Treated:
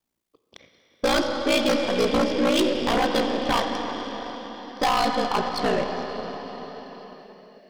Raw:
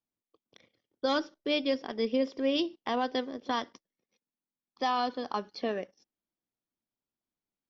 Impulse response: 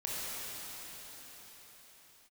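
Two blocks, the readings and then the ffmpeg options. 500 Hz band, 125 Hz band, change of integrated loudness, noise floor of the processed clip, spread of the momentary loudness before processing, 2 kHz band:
+9.0 dB, no reading, +8.0 dB, -74 dBFS, 6 LU, +10.5 dB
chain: -filter_complex "[0:a]aeval=exprs='val(0)*sin(2*PI*29*n/s)':c=same,asplit=2[s0][s1];[1:a]atrim=start_sample=2205[s2];[s1][s2]afir=irnorm=-1:irlink=0,volume=0.376[s3];[s0][s3]amix=inputs=2:normalize=0,aeval=exprs='0.168*sin(PI/2*2.51*val(0)/0.168)':c=same,aeval=exprs='0.178*(cos(1*acos(clip(val(0)/0.178,-1,1)))-cos(1*PI/2))+0.0178*(cos(6*acos(clip(val(0)/0.178,-1,1)))-cos(6*PI/2))':c=same"

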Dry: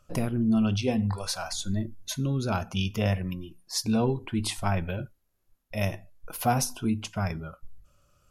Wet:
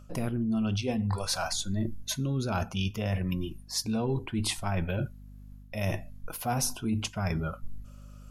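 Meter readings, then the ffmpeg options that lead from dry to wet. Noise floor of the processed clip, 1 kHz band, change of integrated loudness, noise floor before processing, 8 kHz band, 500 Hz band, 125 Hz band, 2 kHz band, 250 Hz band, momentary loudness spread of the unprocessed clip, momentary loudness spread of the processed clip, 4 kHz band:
-48 dBFS, -3.5 dB, -2.5 dB, -70 dBFS, 0.0 dB, -3.0 dB, -1.5 dB, -1.5 dB, -3.5 dB, 12 LU, 13 LU, 0.0 dB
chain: -af "aeval=exprs='val(0)+0.00224*(sin(2*PI*50*n/s)+sin(2*PI*2*50*n/s)/2+sin(2*PI*3*50*n/s)/3+sin(2*PI*4*50*n/s)/4+sin(2*PI*5*50*n/s)/5)':c=same,areverse,acompressor=threshold=0.02:ratio=6,areverse,volume=2.24"

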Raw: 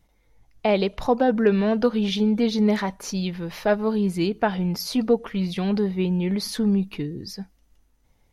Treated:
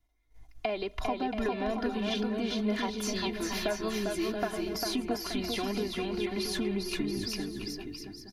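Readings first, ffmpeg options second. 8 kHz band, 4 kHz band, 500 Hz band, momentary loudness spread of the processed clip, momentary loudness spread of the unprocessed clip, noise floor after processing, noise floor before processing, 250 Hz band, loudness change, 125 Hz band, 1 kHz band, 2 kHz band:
-1.5 dB, -2.5 dB, -9.5 dB, 4 LU, 9 LU, -57 dBFS, -64 dBFS, -10.0 dB, -9.5 dB, -13.5 dB, -7.0 dB, -4.5 dB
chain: -filter_complex "[0:a]agate=range=0.178:threshold=0.00158:ratio=16:detection=peak,equalizer=f=420:t=o:w=0.86:g=-4.5,aecho=1:1:2.9:0.96,acrossover=split=230|3000[s0][s1][s2];[s2]alimiter=level_in=1.41:limit=0.0631:level=0:latency=1,volume=0.708[s3];[s0][s1][s3]amix=inputs=3:normalize=0,acompressor=threshold=0.0282:ratio=5,asplit=2[s4][s5];[s5]aecho=0:1:400|680|876|1013|1109:0.631|0.398|0.251|0.158|0.1[s6];[s4][s6]amix=inputs=2:normalize=0"

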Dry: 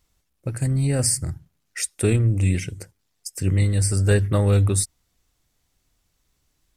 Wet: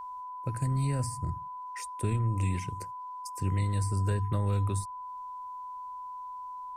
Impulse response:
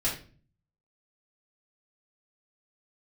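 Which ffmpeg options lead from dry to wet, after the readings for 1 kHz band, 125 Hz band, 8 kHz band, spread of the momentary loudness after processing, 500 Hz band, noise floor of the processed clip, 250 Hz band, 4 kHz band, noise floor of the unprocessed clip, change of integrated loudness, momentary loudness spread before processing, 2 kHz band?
+7.5 dB, -9.0 dB, -17.0 dB, 12 LU, -13.5 dB, -41 dBFS, -10.5 dB, -15.0 dB, -72 dBFS, -11.5 dB, 16 LU, -12.5 dB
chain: -filter_complex "[0:a]acrossover=split=210|530[s0][s1][s2];[s0]acompressor=threshold=0.0794:ratio=4[s3];[s1]acompressor=threshold=0.0158:ratio=4[s4];[s2]acompressor=threshold=0.0126:ratio=4[s5];[s3][s4][s5]amix=inputs=3:normalize=0,aeval=exprs='val(0)+0.0224*sin(2*PI*1000*n/s)':c=same,volume=0.562"

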